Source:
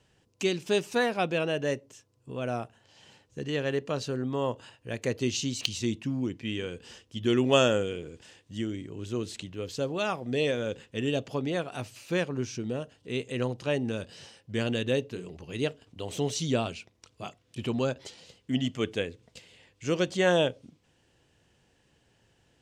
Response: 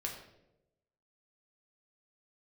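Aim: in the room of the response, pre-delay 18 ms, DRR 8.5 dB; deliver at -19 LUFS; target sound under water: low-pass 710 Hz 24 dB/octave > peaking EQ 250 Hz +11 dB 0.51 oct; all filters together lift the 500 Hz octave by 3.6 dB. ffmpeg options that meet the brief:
-filter_complex "[0:a]equalizer=f=500:t=o:g=3.5,asplit=2[s0][s1];[1:a]atrim=start_sample=2205,adelay=18[s2];[s1][s2]afir=irnorm=-1:irlink=0,volume=0.355[s3];[s0][s3]amix=inputs=2:normalize=0,lowpass=f=710:w=0.5412,lowpass=f=710:w=1.3066,equalizer=f=250:t=o:w=0.51:g=11,volume=2.11"

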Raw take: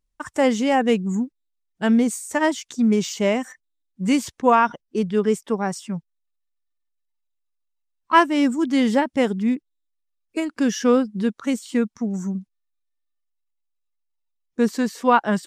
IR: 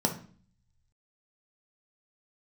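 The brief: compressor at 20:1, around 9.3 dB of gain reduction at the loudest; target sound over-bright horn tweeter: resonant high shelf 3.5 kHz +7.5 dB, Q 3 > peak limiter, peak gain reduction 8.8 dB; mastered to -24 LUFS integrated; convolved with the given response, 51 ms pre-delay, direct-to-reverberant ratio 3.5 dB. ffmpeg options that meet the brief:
-filter_complex "[0:a]acompressor=threshold=0.112:ratio=20,asplit=2[s0][s1];[1:a]atrim=start_sample=2205,adelay=51[s2];[s1][s2]afir=irnorm=-1:irlink=0,volume=0.237[s3];[s0][s3]amix=inputs=2:normalize=0,highshelf=f=3500:t=q:w=3:g=7.5,volume=0.944,alimiter=limit=0.178:level=0:latency=1"

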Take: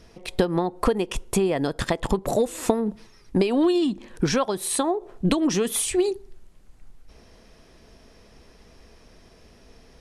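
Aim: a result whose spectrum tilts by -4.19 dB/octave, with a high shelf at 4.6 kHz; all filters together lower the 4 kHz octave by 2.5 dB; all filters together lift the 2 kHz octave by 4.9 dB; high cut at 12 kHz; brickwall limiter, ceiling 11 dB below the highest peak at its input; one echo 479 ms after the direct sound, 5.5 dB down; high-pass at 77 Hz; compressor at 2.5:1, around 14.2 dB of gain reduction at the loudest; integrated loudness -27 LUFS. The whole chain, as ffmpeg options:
-af "highpass=77,lowpass=12000,equalizer=f=2000:t=o:g=7.5,equalizer=f=4000:t=o:g=-9,highshelf=f=4600:g=5.5,acompressor=threshold=0.0126:ratio=2.5,alimiter=level_in=1.88:limit=0.0631:level=0:latency=1,volume=0.531,aecho=1:1:479:0.531,volume=3.55"

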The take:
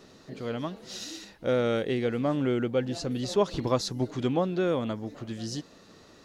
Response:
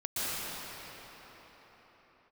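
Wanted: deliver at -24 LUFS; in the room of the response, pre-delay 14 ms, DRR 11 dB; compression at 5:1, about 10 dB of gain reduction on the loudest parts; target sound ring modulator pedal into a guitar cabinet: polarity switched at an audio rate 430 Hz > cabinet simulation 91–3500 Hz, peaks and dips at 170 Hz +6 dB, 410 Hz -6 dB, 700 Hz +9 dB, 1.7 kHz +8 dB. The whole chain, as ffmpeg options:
-filter_complex "[0:a]acompressor=threshold=0.0282:ratio=5,asplit=2[s0][s1];[1:a]atrim=start_sample=2205,adelay=14[s2];[s1][s2]afir=irnorm=-1:irlink=0,volume=0.1[s3];[s0][s3]amix=inputs=2:normalize=0,aeval=exprs='val(0)*sgn(sin(2*PI*430*n/s))':c=same,highpass=91,equalizer=f=170:t=q:w=4:g=6,equalizer=f=410:t=q:w=4:g=-6,equalizer=f=700:t=q:w=4:g=9,equalizer=f=1700:t=q:w=4:g=8,lowpass=f=3500:w=0.5412,lowpass=f=3500:w=1.3066,volume=2.51"

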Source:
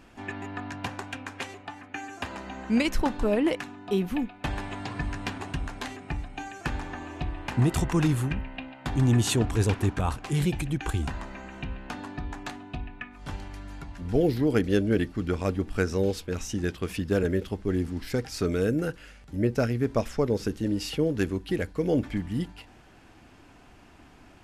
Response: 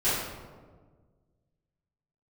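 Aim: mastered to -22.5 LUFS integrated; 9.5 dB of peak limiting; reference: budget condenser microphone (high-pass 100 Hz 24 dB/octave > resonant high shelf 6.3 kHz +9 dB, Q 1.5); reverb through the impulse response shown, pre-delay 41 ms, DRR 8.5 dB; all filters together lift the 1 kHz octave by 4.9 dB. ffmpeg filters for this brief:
-filter_complex "[0:a]equalizer=f=1000:t=o:g=6.5,alimiter=limit=0.126:level=0:latency=1,asplit=2[s0][s1];[1:a]atrim=start_sample=2205,adelay=41[s2];[s1][s2]afir=irnorm=-1:irlink=0,volume=0.0891[s3];[s0][s3]amix=inputs=2:normalize=0,highpass=f=100:w=0.5412,highpass=f=100:w=1.3066,highshelf=f=6300:t=q:w=1.5:g=9,volume=2.37"

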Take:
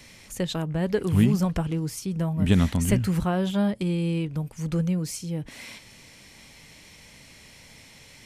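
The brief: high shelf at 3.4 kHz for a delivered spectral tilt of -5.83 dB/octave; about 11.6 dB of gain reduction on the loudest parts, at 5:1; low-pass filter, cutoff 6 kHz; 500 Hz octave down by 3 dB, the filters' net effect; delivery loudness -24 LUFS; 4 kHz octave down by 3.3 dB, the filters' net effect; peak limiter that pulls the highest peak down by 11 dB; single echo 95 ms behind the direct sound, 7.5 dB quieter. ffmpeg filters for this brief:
-af "lowpass=6000,equalizer=f=500:t=o:g=-4,highshelf=f=3400:g=3,equalizer=f=4000:t=o:g=-5.5,acompressor=threshold=0.0398:ratio=5,alimiter=level_in=1.68:limit=0.0631:level=0:latency=1,volume=0.596,aecho=1:1:95:0.422,volume=3.76"

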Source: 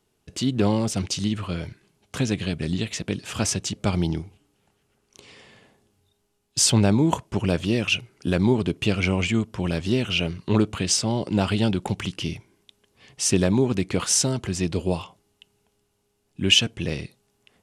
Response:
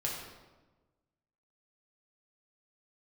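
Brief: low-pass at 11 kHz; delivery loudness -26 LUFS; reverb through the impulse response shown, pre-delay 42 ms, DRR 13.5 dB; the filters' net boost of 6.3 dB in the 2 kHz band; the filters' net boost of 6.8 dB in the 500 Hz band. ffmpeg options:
-filter_complex "[0:a]lowpass=11000,equalizer=f=500:t=o:g=8.5,equalizer=f=2000:t=o:g=8.5,asplit=2[s0][s1];[1:a]atrim=start_sample=2205,adelay=42[s2];[s1][s2]afir=irnorm=-1:irlink=0,volume=0.133[s3];[s0][s3]amix=inputs=2:normalize=0,volume=0.531"

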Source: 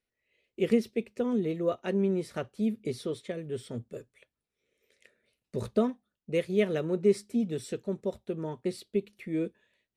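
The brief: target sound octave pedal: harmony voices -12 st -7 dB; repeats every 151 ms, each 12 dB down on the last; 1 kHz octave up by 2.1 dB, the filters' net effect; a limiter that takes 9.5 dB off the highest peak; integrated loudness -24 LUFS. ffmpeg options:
-filter_complex "[0:a]equalizer=f=1000:t=o:g=3,alimiter=limit=0.0794:level=0:latency=1,aecho=1:1:151|302|453:0.251|0.0628|0.0157,asplit=2[s0][s1];[s1]asetrate=22050,aresample=44100,atempo=2,volume=0.447[s2];[s0][s2]amix=inputs=2:normalize=0,volume=2.66"

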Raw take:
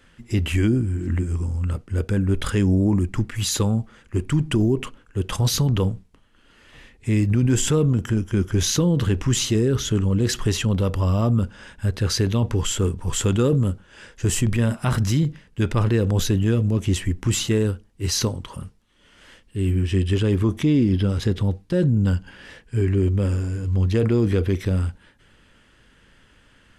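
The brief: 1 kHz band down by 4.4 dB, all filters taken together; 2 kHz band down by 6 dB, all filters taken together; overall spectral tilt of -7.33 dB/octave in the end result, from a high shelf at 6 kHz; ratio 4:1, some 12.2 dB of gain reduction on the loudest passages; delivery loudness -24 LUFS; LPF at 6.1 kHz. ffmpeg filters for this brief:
-af "lowpass=6100,equalizer=f=1000:t=o:g=-3.5,equalizer=f=2000:t=o:g=-6,highshelf=f=6000:g=-7.5,acompressor=threshold=0.0282:ratio=4,volume=3.16"

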